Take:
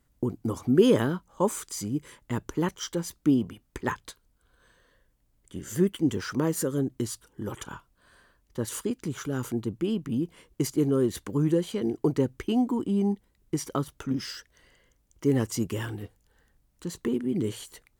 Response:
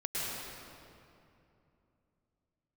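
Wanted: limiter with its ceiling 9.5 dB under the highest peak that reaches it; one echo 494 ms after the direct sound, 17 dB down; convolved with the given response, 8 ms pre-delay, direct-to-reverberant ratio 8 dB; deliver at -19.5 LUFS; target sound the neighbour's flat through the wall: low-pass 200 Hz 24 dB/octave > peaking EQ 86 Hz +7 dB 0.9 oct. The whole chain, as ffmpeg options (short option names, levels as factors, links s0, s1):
-filter_complex "[0:a]alimiter=limit=0.119:level=0:latency=1,aecho=1:1:494:0.141,asplit=2[s0][s1];[1:a]atrim=start_sample=2205,adelay=8[s2];[s1][s2]afir=irnorm=-1:irlink=0,volume=0.2[s3];[s0][s3]amix=inputs=2:normalize=0,lowpass=f=200:w=0.5412,lowpass=f=200:w=1.3066,equalizer=f=86:t=o:w=0.9:g=7,volume=5.31"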